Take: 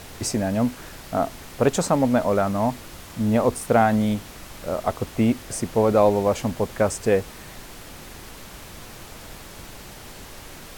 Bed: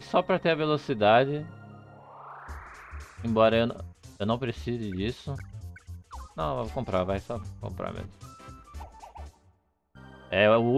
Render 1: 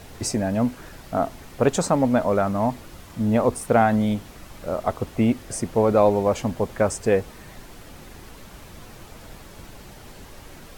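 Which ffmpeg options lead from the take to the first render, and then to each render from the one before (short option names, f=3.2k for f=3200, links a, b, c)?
-af "afftdn=nr=6:nf=-42"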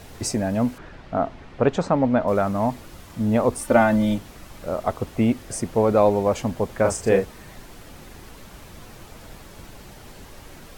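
-filter_complex "[0:a]asettb=1/sr,asplit=3[a][b][c];[a]atrim=end=0.784[d];[b]atrim=start=0.78:end=2.28,asetpts=PTS-STARTPTS,afade=t=in:d=0.004:c=qsin,afade=t=out:st=1.496:d=0.004:c=qsin,lowpass=3.2k[e];[c]atrim=start=2.276[f];[d][e]acrossfade=d=0.004:c1=hsin:c2=qsin[g];[g][f]acrossfade=d=0.004:c1=qsin:c2=hsin,asettb=1/sr,asplit=3[h][i][j];[h]atrim=end=3.584[k];[i]atrim=start=3.58:end=4.18,asetpts=PTS-STARTPTS,afade=t=in:d=0.004:c=qsin,afade=t=out:st=0.596:d=0.004:c=qsin,aecho=1:1:3.4:0.78,atrim=end_sample=26460[l];[j]atrim=start=4.176[m];[k][l]acrossfade=d=0.004:c1=hsin:c2=qsin[n];[n][m]acrossfade=d=0.004:c1=qsin:c2=hsin,asettb=1/sr,asplit=3[o][p][q];[o]atrim=end=6.814[r];[p]atrim=start=6.81:end=7.25,asetpts=PTS-STARTPTS,afade=t=in:d=0.004:c=qsin,afade=t=out:st=0.436:d=0.004:c=qsin,asplit=2[s][t];[t]adelay=36,volume=-4dB[u];[s][u]amix=inputs=2:normalize=0,atrim=end_sample=19404[v];[q]atrim=start=7.246[w];[r][v]acrossfade=d=0.004:c1=hsin:c2=qsin[x];[x][w]acrossfade=d=0.004:c1=qsin:c2=hsin"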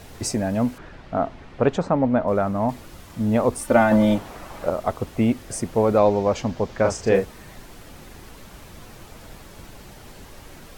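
-filter_complex "[0:a]asettb=1/sr,asplit=3[a][b][c];[a]atrim=end=1.774[d];[b]atrim=start=1.77:end=2.69,asetpts=PTS-STARTPTS,afade=t=in:d=0.004:c=qsin,afade=t=out:st=0.916:d=0.004:c=qsin,highshelf=f=2.8k:g=-8[e];[c]atrim=start=2.686[f];[d][e]acrossfade=d=0.004:c1=hsin:c2=qsin[g];[g][f]acrossfade=d=0.004:c1=qsin:c2=hsin,asettb=1/sr,asplit=3[h][i][j];[h]atrim=end=3.914[k];[i]atrim=start=3.91:end=4.7,asetpts=PTS-STARTPTS,afade=t=in:d=0.004:c=qsin,afade=t=out:st=0.786:d=0.004:c=qsin,equalizer=f=820:t=o:w=2.4:g=10.5[l];[j]atrim=start=4.696[m];[k][l]acrossfade=d=0.004:c1=hsin:c2=qsin[n];[n][m]acrossfade=d=0.004:c1=qsin:c2=hsin,asettb=1/sr,asplit=3[o][p][q];[o]atrim=end=5.984[r];[p]atrim=start=5.98:end=7.15,asetpts=PTS-STARTPTS,afade=t=in:d=0.004:c=qsin,afade=t=out:st=1.166:d=0.004:c=qsin,highshelf=f=7.5k:t=q:w=1.5:g=-9.5[s];[q]atrim=start=7.146[t];[r][s]acrossfade=d=0.004:c1=hsin:c2=qsin[u];[u][t]acrossfade=d=0.004:c1=qsin:c2=hsin"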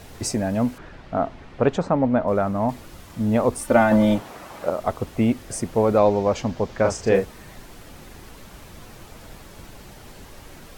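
-filter_complex "[0:a]asettb=1/sr,asplit=3[a][b][c];[a]atrim=end=4.204[d];[b]atrim=start=4.2:end=4.8,asetpts=PTS-STARTPTS,afade=t=in:d=0.004:c=qsin,afade=t=out:st=0.596:d=0.004:c=qsin,highpass=f=160:p=1[e];[c]atrim=start=4.796[f];[d][e]acrossfade=d=0.004:c1=hsin:c2=qsin[g];[g][f]acrossfade=d=0.004:c1=qsin:c2=hsin"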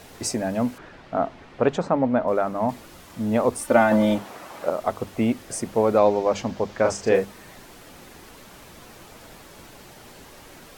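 -af "lowshelf=f=110:g=-11,bandreject=f=50:t=h:w=6,bandreject=f=100:t=h:w=6,bandreject=f=150:t=h:w=6,bandreject=f=200:t=h:w=6"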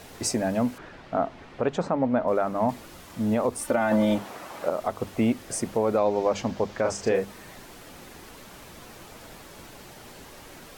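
-af "alimiter=limit=-13dB:level=0:latency=1:release=190"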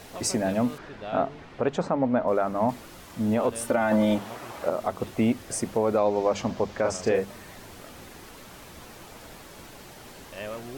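-filter_complex "[1:a]volume=-16dB[a];[0:a][a]amix=inputs=2:normalize=0"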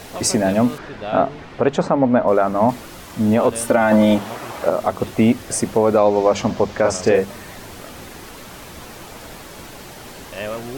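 -af "volume=8.5dB"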